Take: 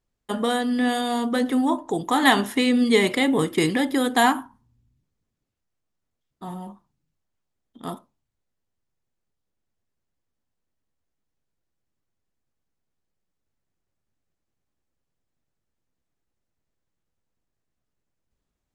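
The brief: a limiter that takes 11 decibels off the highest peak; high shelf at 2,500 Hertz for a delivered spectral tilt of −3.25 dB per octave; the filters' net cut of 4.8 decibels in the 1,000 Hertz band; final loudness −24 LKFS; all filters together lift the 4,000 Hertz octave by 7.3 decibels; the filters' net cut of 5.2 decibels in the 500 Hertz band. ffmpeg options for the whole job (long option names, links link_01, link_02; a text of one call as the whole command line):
ffmpeg -i in.wav -af "equalizer=frequency=500:width_type=o:gain=-5.5,equalizer=frequency=1000:width_type=o:gain=-5,highshelf=frequency=2500:gain=3.5,equalizer=frequency=4000:width_type=o:gain=6.5,volume=0.5dB,alimiter=limit=-14dB:level=0:latency=1" out.wav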